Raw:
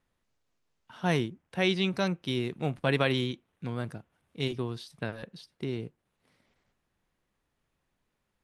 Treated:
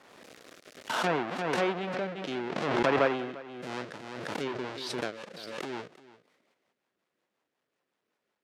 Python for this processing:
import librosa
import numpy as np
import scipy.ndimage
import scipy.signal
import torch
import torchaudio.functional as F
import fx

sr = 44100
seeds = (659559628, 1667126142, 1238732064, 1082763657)

y = fx.halfwave_hold(x, sr)
y = scipy.signal.sosfilt(scipy.signal.butter(2, 400.0, 'highpass', fs=sr, output='sos'), y)
y = fx.high_shelf(y, sr, hz=7300.0, db=-11.5)
y = fx.env_lowpass_down(y, sr, base_hz=2200.0, full_db=-26.0)
y = fx.rotary_switch(y, sr, hz=0.6, then_hz=5.5, switch_at_s=2.98)
y = y + 10.0 ** (-18.5 / 20.0) * np.pad(y, (int(347 * sr / 1000.0), 0))[:len(y)]
y = fx.pre_swell(y, sr, db_per_s=30.0)